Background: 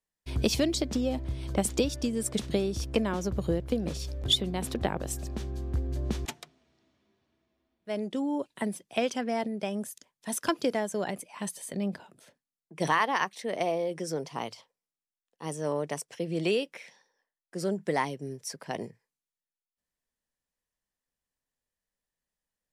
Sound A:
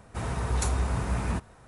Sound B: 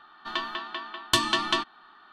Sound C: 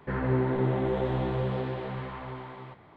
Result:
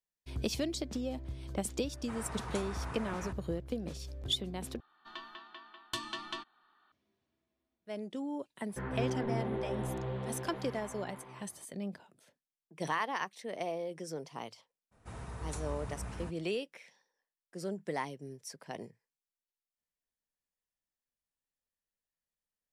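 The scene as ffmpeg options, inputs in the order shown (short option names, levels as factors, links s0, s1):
-filter_complex "[1:a]asplit=2[s0][s1];[0:a]volume=0.398[s2];[s0]equalizer=f=1400:w=0.41:g=11.5[s3];[s2]asplit=2[s4][s5];[s4]atrim=end=4.804[s6];[2:a]atrim=end=2.12,asetpts=PTS-STARTPTS,volume=0.168[s7];[s5]atrim=start=6.916[s8];[s3]atrim=end=1.67,asetpts=PTS-STARTPTS,volume=0.133,afade=t=in:d=0.004:c=hsin,afade=t=out:st=1.666:d=0.004:c=hsin,adelay=1930[s9];[3:a]atrim=end=2.96,asetpts=PTS-STARTPTS,volume=0.376,afade=t=in:d=0.004:c=hsin,afade=t=out:st=2.956:d=0.004:c=hsin,adelay=8690[s10];[s1]atrim=end=1.67,asetpts=PTS-STARTPTS,volume=0.211,afade=t=in:d=0.02,afade=t=out:st=1.65:d=0.02,adelay=14910[s11];[s6][s7]acrossfade=d=0.004:c1=hsin:c2=hsin[s12];[s12][s8]acrossfade=d=0.004:c1=hsin:c2=hsin[s13];[s13][s9][s10][s11]amix=inputs=4:normalize=0"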